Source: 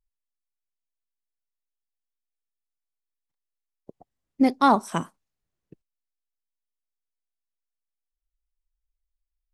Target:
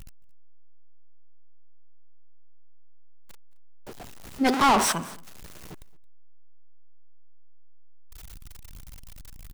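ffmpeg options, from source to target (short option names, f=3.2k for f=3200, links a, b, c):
-filter_complex "[0:a]aeval=exprs='val(0)+0.5*0.0376*sgn(val(0))':c=same,asplit=3[a][b][c];[a]afade=t=out:st=4.44:d=0.02[d];[b]asplit=2[e][f];[f]highpass=f=720:p=1,volume=30dB,asoftclip=type=tanh:threshold=-6dB[g];[e][g]amix=inputs=2:normalize=0,lowpass=f=4.6k:p=1,volume=-6dB,afade=t=in:st=4.44:d=0.02,afade=t=out:st=4.91:d=0.02[h];[c]afade=t=in:st=4.91:d=0.02[i];[d][h][i]amix=inputs=3:normalize=0,aecho=1:1:221:0.0668,volume=-6.5dB"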